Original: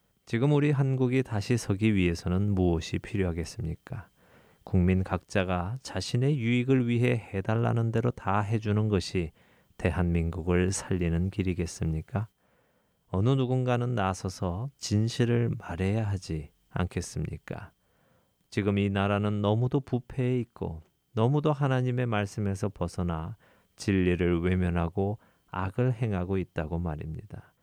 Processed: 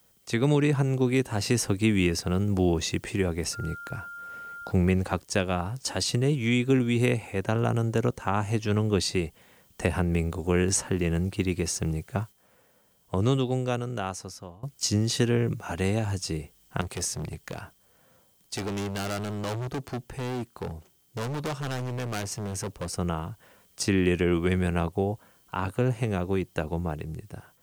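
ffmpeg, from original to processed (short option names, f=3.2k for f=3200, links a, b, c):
-filter_complex "[0:a]asettb=1/sr,asplit=3[a][b][c];[a]atrim=end=3.534[d];[b]atrim=start=3.53:end=4.71,asetpts=PTS-STARTPTS,afade=t=in:d=0.004:c=qsin,afade=t=out:st=1.176:d=0.004:c=qsin,aeval=exprs='val(0)+0.00794*sin(2*PI*1400*n/s)':c=same[e];[c]atrim=start=4.706[f];[d][e]acrossfade=d=0.004:c1=hsin:c2=qsin[g];[g][f]acrossfade=d=0.004:c1=qsin:c2=hsin,asettb=1/sr,asplit=3[h][i][j];[h]atrim=end=16.814[k];[i]atrim=start=16.81:end=22.97,asetpts=PTS-STARTPTS,afade=t=in:d=0.004:c=qsin,afade=t=out:st=6.156:d=0.004:c=qsin,volume=31dB,asoftclip=hard,volume=-31dB[l];[j]atrim=start=22.966[m];[k][l]acrossfade=d=0.004:c1=hsin:c2=qsin[n];[n][m]acrossfade=d=0.004:c1=qsin:c2=hsin,asplit=2[o][p];[o]atrim=end=14.63,asetpts=PTS-STARTPTS,afade=t=out:st=13.23:d=1.4:silence=0.0891251[q];[p]atrim=start=14.63,asetpts=PTS-STARTPTS,afade=t=in:d=0.004:c=hsin:silence=0.0891251[r];[q][r]concat=n=2:v=0:a=1,bass=f=250:g=-4,treble=f=4k:g=9,acrossover=split=330[s][t];[t]acompressor=threshold=-30dB:ratio=2[u];[s][u]amix=inputs=2:normalize=0,volume=4dB"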